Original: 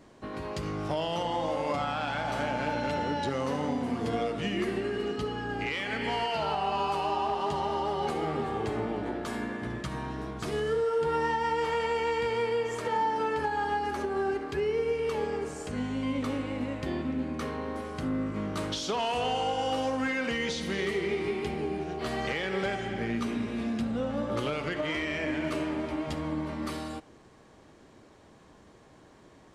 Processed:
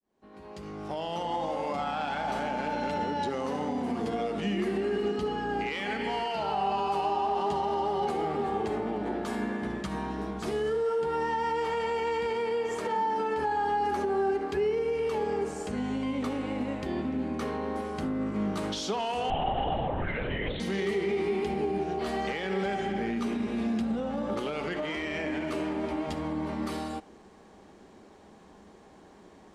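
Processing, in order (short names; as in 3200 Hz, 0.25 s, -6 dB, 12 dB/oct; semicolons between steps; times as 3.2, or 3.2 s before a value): opening faded in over 1.87 s; limiter -25 dBFS, peak gain reduction 5 dB; thirty-one-band EQ 125 Hz -12 dB, 200 Hz +8 dB, 400 Hz +5 dB, 800 Hz +6 dB; 19.3–20.6 LPC vocoder at 8 kHz whisper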